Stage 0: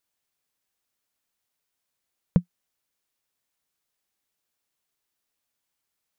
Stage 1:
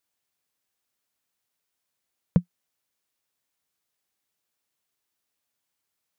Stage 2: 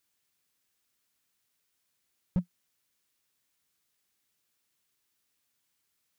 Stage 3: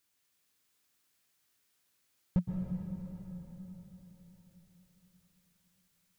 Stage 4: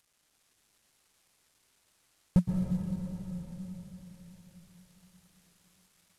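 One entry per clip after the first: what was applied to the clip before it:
HPF 54 Hz
bell 700 Hz -6 dB 1.3 oct; slew limiter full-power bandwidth 7.1 Hz; gain +4 dB
plate-style reverb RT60 4.5 s, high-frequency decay 0.8×, pre-delay 0.105 s, DRR 0 dB
CVSD 64 kbps; gain +6 dB

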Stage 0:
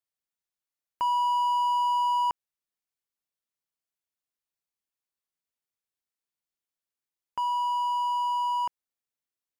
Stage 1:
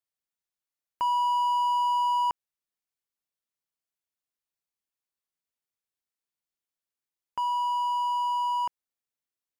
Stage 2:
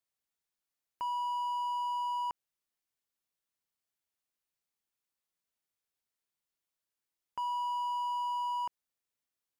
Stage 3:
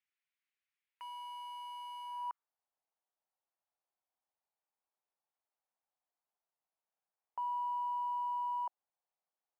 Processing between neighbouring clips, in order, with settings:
nothing audible
limiter -30 dBFS, peak gain reduction 10 dB; gain +1 dB
careless resampling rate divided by 4×, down none, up hold; band-pass sweep 2200 Hz -> 780 Hz, 2.02–2.55; gain +1 dB

